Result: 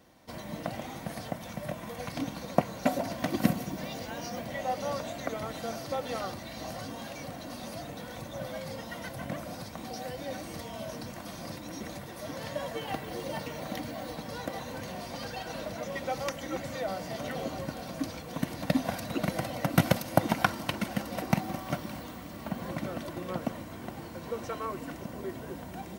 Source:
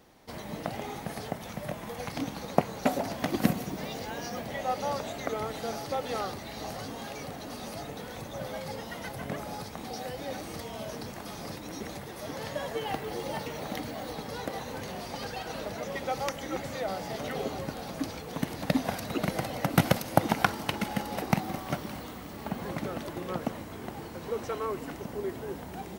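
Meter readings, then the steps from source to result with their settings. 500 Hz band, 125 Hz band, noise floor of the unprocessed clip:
-1.0 dB, 0.0 dB, -42 dBFS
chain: notch comb 420 Hz

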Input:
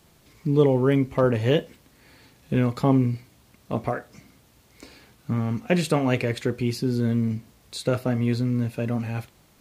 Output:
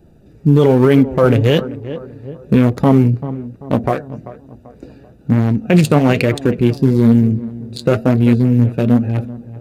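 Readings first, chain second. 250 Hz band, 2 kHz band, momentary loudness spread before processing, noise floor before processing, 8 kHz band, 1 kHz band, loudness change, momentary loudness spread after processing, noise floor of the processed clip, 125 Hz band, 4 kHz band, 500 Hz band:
+11.5 dB, +8.0 dB, 11 LU, -58 dBFS, +5.0 dB, +8.5 dB, +10.5 dB, 16 LU, -46 dBFS, +11.0 dB, +7.0 dB, +9.0 dB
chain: Wiener smoothing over 41 samples; high shelf 7100 Hz +9 dB; on a send: darkening echo 0.388 s, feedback 44%, low-pass 1300 Hz, level -17 dB; on the sum: flange 1.1 Hz, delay 2.4 ms, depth 5.1 ms, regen +61%; maximiser +18.5 dB; gain -1 dB

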